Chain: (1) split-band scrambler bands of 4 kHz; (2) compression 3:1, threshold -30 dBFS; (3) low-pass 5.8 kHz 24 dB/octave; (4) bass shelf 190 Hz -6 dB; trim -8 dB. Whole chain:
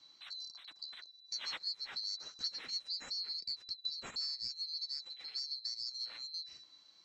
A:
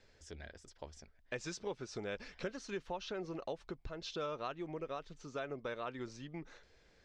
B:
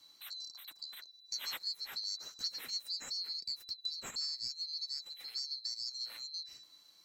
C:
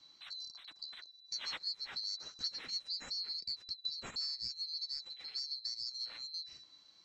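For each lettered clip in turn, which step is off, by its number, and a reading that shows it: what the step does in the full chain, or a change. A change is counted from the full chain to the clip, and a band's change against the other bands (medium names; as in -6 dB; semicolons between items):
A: 1, 4 kHz band -28.0 dB; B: 3, 8 kHz band +5.5 dB; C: 4, 250 Hz band +2.0 dB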